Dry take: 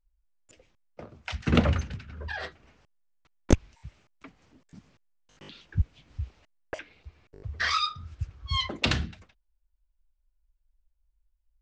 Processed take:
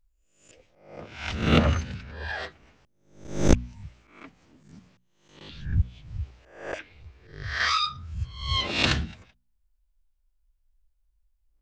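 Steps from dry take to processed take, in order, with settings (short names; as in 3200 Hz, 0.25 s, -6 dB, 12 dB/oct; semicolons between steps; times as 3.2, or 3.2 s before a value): spectral swells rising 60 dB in 0.55 s; de-hum 60.47 Hz, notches 4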